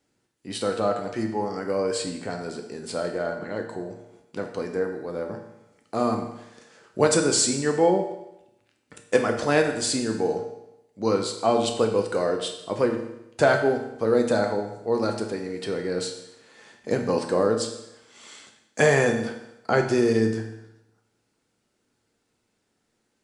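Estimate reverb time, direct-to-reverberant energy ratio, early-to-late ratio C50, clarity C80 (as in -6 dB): 0.85 s, 3.0 dB, 7.0 dB, 9.5 dB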